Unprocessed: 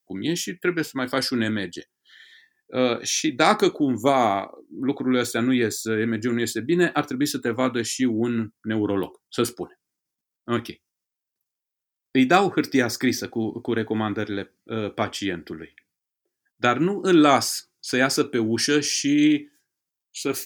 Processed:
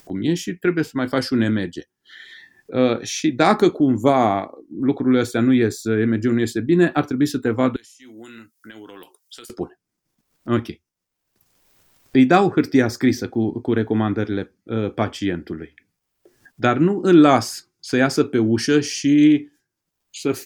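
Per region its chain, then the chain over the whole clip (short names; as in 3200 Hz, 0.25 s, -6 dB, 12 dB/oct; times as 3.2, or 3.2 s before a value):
7.76–9.5 differentiator + compressor 5:1, threshold -43 dBFS + mismatched tape noise reduction encoder only
whole clip: tilt -2 dB/oct; upward compressor, threshold -33 dBFS; gain +1.5 dB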